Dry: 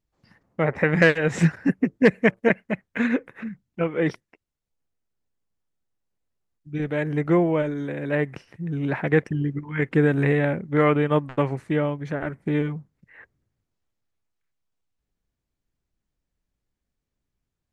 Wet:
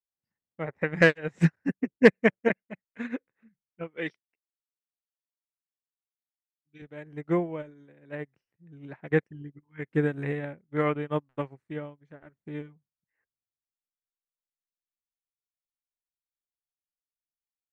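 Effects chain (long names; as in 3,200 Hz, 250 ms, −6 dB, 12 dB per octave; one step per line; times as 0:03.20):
0:03.97–0:06.82: meter weighting curve D
expander for the loud parts 2.5 to 1, over −35 dBFS
level +1.5 dB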